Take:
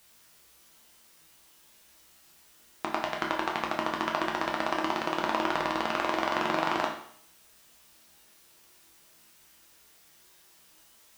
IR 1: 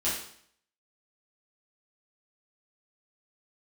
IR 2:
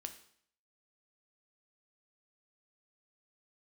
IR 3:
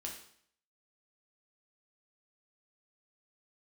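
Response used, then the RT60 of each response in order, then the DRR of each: 3; 0.60, 0.60, 0.60 seconds; −10.0, 6.5, −1.0 decibels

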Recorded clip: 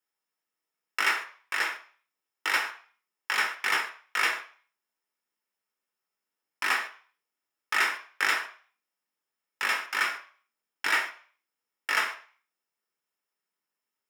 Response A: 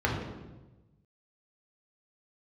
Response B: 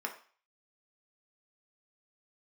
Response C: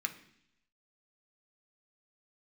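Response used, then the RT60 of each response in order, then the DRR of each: B; 1.1, 0.40, 0.70 seconds; −3.0, 1.5, 4.0 decibels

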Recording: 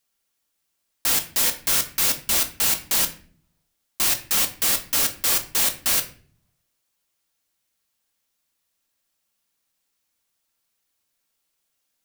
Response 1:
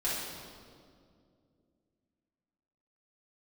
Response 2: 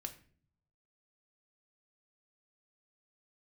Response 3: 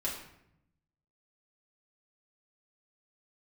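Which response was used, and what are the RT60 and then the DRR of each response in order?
2; 2.3, 0.45, 0.75 seconds; −9.5, 5.5, −5.5 decibels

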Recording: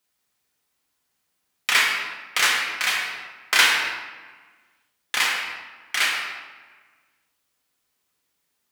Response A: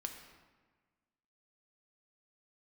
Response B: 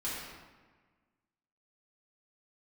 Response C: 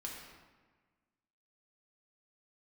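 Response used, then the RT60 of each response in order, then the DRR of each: C; 1.4, 1.4, 1.4 seconds; 4.0, −9.5, −2.5 decibels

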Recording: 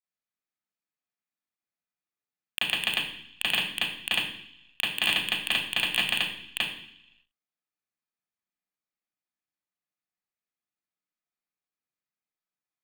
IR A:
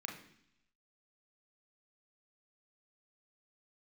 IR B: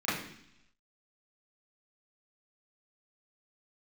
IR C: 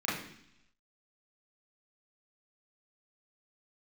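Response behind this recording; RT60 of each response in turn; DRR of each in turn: B; 0.70, 0.70, 0.70 seconds; 1.0, −12.5, −8.5 decibels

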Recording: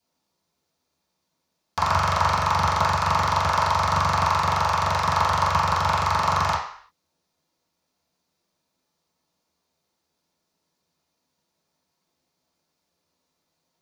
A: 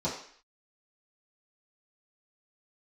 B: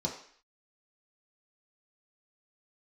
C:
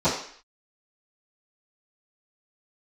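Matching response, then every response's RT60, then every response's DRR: A; 0.55, 0.55, 0.55 seconds; −10.0, −2.5, −18.5 decibels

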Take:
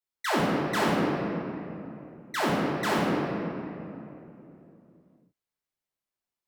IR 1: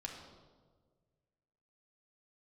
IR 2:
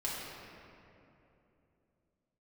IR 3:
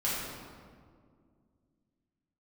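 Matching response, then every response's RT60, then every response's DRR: 2; 1.6, 3.0, 2.1 seconds; −0.5, −7.5, −8.5 decibels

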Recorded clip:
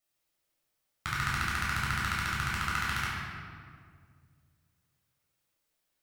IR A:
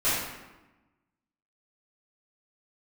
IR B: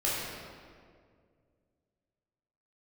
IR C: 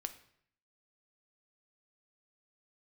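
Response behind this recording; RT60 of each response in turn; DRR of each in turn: B; 1.1, 2.1, 0.65 seconds; −13.0, −7.5, 8.5 decibels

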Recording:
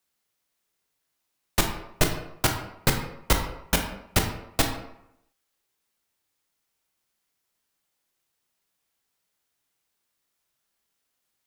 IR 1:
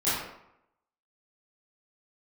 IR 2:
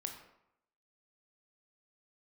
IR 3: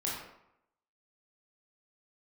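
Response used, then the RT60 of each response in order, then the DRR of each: 2; 0.80, 0.80, 0.80 seconds; −14.0, 3.5, −5.5 decibels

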